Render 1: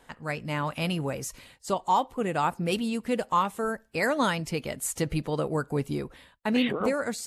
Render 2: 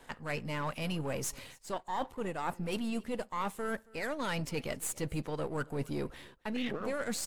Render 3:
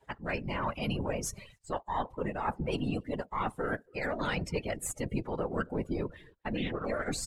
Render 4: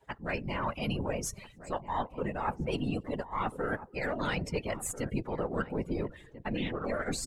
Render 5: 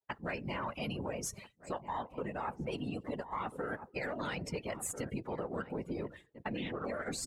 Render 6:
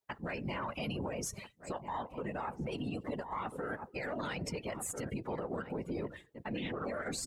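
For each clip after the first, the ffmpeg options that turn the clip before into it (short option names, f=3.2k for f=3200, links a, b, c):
-af "aeval=exprs='if(lt(val(0),0),0.447*val(0),val(0))':c=same,areverse,acompressor=threshold=-35dB:ratio=10,areverse,aecho=1:1:274:0.0668,volume=3.5dB"
-af "afftfilt=real='hypot(re,im)*cos(2*PI*random(0))':imag='hypot(re,im)*sin(2*PI*random(1))':win_size=512:overlap=0.75,afftdn=nr=17:nf=-53,highshelf=f=9.2k:g=-4.5,volume=8.5dB"
-filter_complex "[0:a]asplit=2[a][b];[b]adelay=1341,volume=-13dB,highshelf=f=4k:g=-30.2[c];[a][c]amix=inputs=2:normalize=0"
-af "highpass=f=110:p=1,agate=range=-33dB:threshold=-42dB:ratio=3:detection=peak,acompressor=threshold=-37dB:ratio=6,volume=2dB"
-af "alimiter=level_in=9dB:limit=-24dB:level=0:latency=1:release=55,volume=-9dB,volume=3.5dB"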